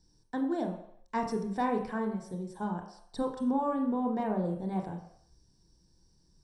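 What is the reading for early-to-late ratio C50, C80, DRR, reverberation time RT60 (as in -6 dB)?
6.5 dB, 9.5 dB, 2.5 dB, not exponential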